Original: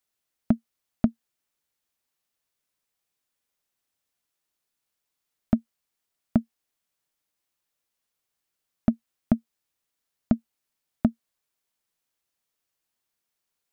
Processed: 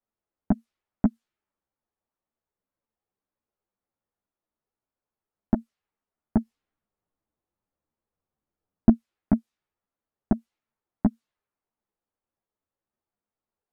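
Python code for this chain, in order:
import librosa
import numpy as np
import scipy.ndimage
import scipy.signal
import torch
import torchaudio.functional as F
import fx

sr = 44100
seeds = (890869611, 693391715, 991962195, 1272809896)

y = fx.env_lowpass(x, sr, base_hz=970.0, full_db=-23.0)
y = fx.low_shelf(y, sr, hz=330.0, db=7.5, at=(6.4, 8.92), fade=0.02)
y = fx.ensemble(y, sr)
y = F.gain(torch.from_numpy(y), 4.5).numpy()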